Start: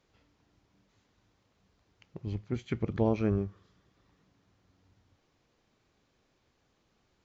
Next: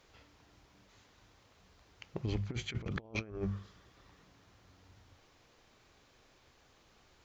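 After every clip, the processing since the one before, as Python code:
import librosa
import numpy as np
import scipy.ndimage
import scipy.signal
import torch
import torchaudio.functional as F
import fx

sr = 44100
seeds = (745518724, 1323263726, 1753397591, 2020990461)

y = fx.peak_eq(x, sr, hz=210.0, db=-6.5, octaves=2.2)
y = fx.hum_notches(y, sr, base_hz=50, count=4)
y = fx.over_compress(y, sr, threshold_db=-41.0, ratio=-0.5)
y = y * 10.0 ** (4.0 / 20.0)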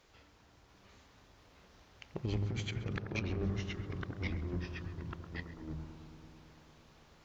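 y = fx.echo_bbd(x, sr, ms=87, stages=1024, feedback_pct=81, wet_db=-8.5)
y = fx.echo_pitch(y, sr, ms=689, semitones=-2, count=2, db_per_echo=-3.0)
y = y + 10.0 ** (-18.5 / 20.0) * np.pad(y, (int(134 * sr / 1000.0), 0))[:len(y)]
y = y * 10.0 ** (-1.0 / 20.0)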